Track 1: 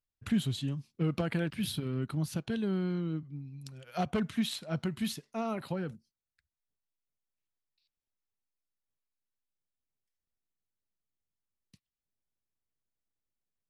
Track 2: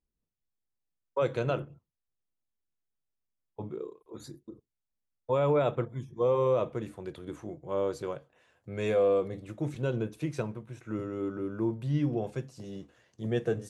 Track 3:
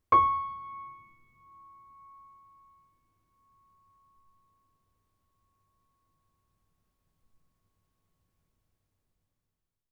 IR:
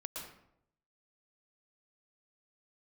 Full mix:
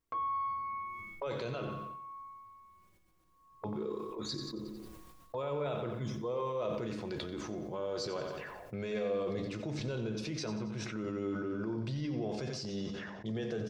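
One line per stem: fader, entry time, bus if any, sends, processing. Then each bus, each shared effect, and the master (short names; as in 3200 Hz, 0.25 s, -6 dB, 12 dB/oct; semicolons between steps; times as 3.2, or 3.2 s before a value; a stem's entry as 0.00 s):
off
+2.0 dB, 0.05 s, bus A, send -10 dB, echo send -6 dB, limiter -27 dBFS, peak gain reduction 10 dB; resonator 210 Hz, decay 0.18 s, harmonics all, mix 60%; envelope low-pass 380–5000 Hz up, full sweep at -47.5 dBFS
0.0 dB, 0.00 s, bus A, no send, no echo send, compressor 3:1, threshold -32 dBFS, peak gain reduction 11 dB; endless flanger 3.9 ms -0.56 Hz
bus A: 0.0 dB, AGC gain up to 6.5 dB; limiter -30 dBFS, peak gain reduction 10 dB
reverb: on, RT60 0.75 s, pre-delay 0.108 s
echo: feedback echo 90 ms, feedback 45%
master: low shelf 220 Hz -3.5 dB; sustainer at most 28 dB/s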